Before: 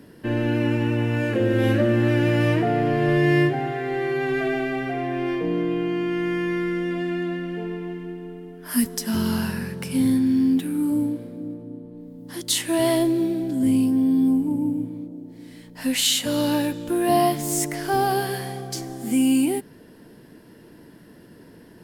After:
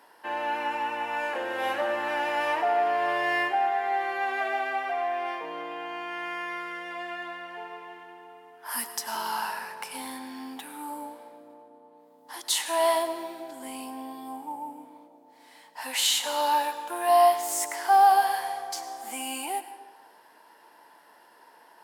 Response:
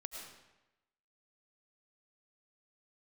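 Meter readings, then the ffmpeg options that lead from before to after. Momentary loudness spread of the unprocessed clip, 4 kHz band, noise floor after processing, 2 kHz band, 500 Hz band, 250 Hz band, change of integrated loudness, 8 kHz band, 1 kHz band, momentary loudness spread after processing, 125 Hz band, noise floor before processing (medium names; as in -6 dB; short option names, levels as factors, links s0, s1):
14 LU, -3.0 dB, -56 dBFS, -1.5 dB, -5.5 dB, -21.5 dB, -5.0 dB, -3.5 dB, +5.0 dB, 17 LU, under -35 dB, -48 dBFS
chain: -filter_complex "[0:a]highpass=f=870:t=q:w=4.9,asplit=2[s0][s1];[1:a]atrim=start_sample=2205[s2];[s1][s2]afir=irnorm=-1:irlink=0,volume=0.794[s3];[s0][s3]amix=inputs=2:normalize=0,volume=0.447"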